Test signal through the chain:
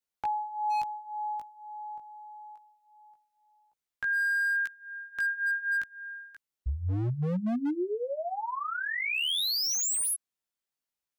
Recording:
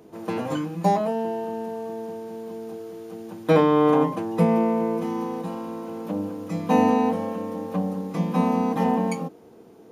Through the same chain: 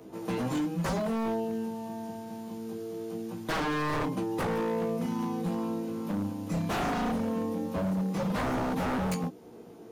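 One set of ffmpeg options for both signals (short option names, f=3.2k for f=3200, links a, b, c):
-filter_complex "[0:a]acrossover=split=280|3000[a][b][c];[b]acompressor=threshold=-50dB:ratio=1.5[d];[a][d][c]amix=inputs=3:normalize=0,flanger=delay=15.5:depth=3.5:speed=0.23,aeval=exprs='0.0355*(abs(mod(val(0)/0.0355+3,4)-2)-1)':c=same,volume=4.5dB"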